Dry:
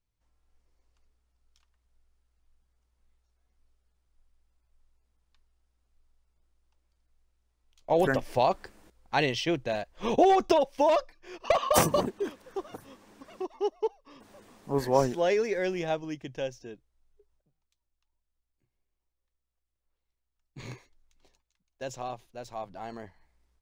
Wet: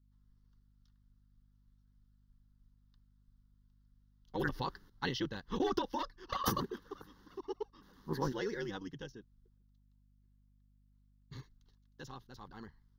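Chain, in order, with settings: granular stretch 0.55×, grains 21 ms; hum 50 Hz, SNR 31 dB; fixed phaser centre 2400 Hz, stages 6; gain -3 dB

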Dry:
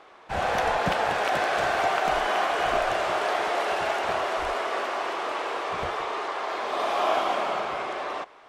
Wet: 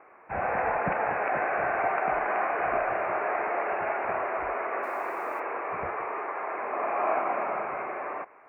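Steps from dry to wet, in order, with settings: steep low-pass 2500 Hz 96 dB/oct; 4.83–5.4 requantised 10-bit, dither triangular; HPF 92 Hz 6 dB/oct; gain -2.5 dB

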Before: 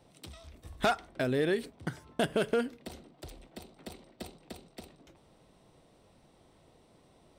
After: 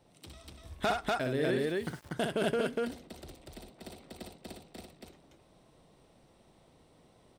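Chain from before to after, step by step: loudspeakers at several distances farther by 21 m -5 dB, 83 m -1 dB; 1.67–2.13 sample gate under -46 dBFS; gain -3.5 dB

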